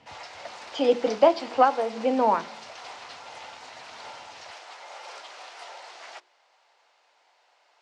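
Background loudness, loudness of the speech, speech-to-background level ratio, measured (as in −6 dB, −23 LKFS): −42.0 LKFS, −23.5 LKFS, 18.5 dB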